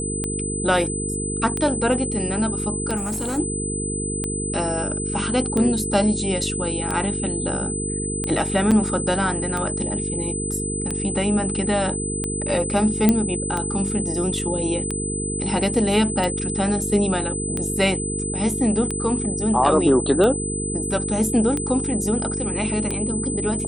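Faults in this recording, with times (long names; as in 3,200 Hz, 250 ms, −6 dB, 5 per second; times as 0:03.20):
mains buzz 50 Hz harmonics 9 −28 dBFS
scratch tick 45 rpm −12 dBFS
whistle 8,100 Hz −27 dBFS
0:02.96–0:03.39: clipping −22 dBFS
0:08.71–0:08.72: drop-out 6.4 ms
0:13.09: click −3 dBFS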